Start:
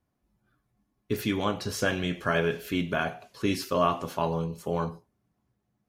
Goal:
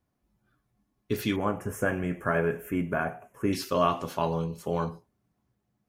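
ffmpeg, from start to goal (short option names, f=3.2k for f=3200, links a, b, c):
-filter_complex "[0:a]asettb=1/sr,asplit=3[a][b][c];[a]atrim=end=1.364[d];[b]atrim=start=1.36:end=3.53,asetpts=PTS-STARTPTS,afade=t=in:d=0.004:c=qsin,afade=t=out:st=2.166:d=0.004:c=qsin,asuperstop=centerf=4200:order=4:qfactor=0.65[e];[c]atrim=start=3.526[f];[d][e]acrossfade=d=0.004:c1=hsin:c2=qsin[g];[g][f]acrossfade=d=0.004:c1=qsin:c2=hsin"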